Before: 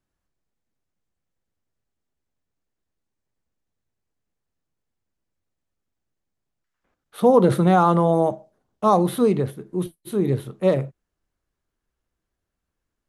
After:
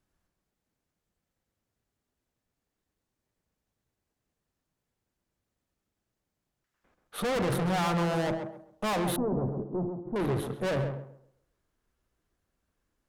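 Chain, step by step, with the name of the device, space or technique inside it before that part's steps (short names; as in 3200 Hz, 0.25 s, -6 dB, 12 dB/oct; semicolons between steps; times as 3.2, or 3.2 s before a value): rockabilly slapback (tube stage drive 31 dB, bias 0.4; tape echo 0.134 s, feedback 31%, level -4 dB, low-pass 1400 Hz); 9.16–10.16 inverse Chebyshev low-pass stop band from 3200 Hz, stop band 60 dB; gain +3.5 dB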